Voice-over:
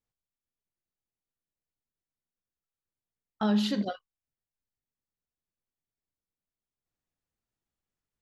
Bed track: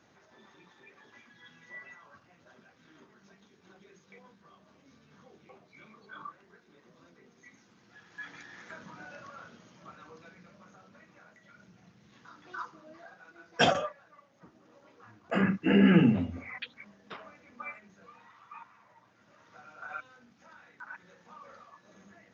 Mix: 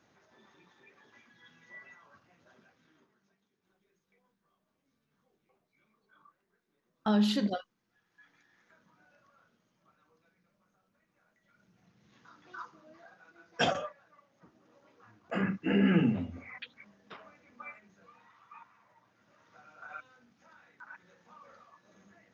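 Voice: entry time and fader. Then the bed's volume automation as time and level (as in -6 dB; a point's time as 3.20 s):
3.65 s, -0.5 dB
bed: 2.65 s -4 dB
3.44 s -18.5 dB
11.00 s -18.5 dB
12.11 s -4.5 dB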